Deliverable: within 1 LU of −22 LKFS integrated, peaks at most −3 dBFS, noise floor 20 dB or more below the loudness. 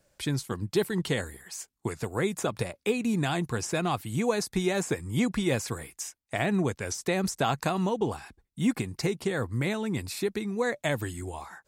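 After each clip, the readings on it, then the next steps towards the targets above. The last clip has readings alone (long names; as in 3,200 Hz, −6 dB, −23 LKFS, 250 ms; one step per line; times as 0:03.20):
integrated loudness −30.0 LKFS; sample peak −13.5 dBFS; target loudness −22.0 LKFS
→ level +8 dB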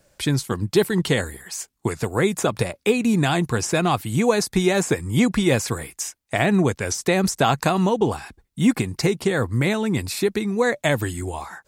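integrated loudness −22.0 LKFS; sample peak −5.5 dBFS; background noise floor −68 dBFS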